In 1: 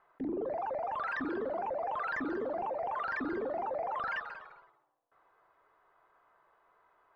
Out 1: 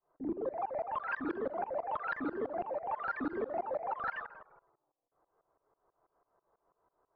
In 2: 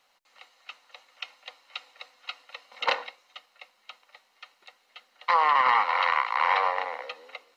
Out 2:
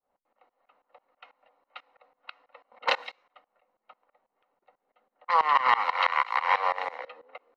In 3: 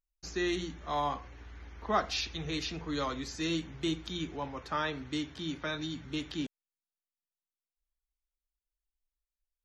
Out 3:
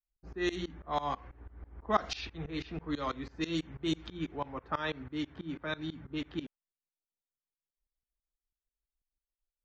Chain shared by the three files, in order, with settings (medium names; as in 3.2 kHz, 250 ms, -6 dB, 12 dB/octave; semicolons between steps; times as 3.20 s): tremolo saw up 6.1 Hz, depth 95%; level-controlled noise filter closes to 620 Hz, open at -29 dBFS; trim +3 dB